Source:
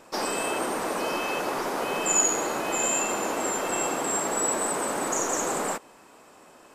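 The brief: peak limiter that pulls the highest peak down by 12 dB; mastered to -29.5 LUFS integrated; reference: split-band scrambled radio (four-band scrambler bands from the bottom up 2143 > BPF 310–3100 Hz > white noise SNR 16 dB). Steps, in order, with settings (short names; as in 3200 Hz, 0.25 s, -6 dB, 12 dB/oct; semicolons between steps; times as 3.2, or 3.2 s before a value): limiter -22 dBFS; four-band scrambler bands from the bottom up 2143; BPF 310–3100 Hz; white noise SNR 16 dB; gain +1.5 dB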